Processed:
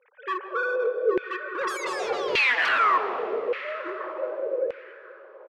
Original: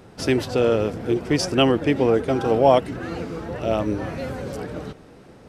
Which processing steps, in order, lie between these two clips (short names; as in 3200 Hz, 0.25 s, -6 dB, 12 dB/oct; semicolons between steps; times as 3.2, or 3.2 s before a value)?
sine-wave speech; high shelf 2200 Hz -9 dB; in parallel at -1.5 dB: compressor, threshold -26 dBFS, peak gain reduction 14.5 dB; on the sum: painted sound fall, 1.67–2.98, 350–2700 Hz -10 dBFS; notch comb 680 Hz; wrapped overs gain 2.5 dB; speakerphone echo 0.16 s, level -14 dB; wavefolder -16.5 dBFS; band-limited delay 0.531 s, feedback 37%, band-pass 1100 Hz, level -14 dB; on a send at -5.5 dB: reverb RT60 4.0 s, pre-delay 0.11 s; on the sum: LFO band-pass saw down 0.85 Hz 480–2400 Hz; gain +4 dB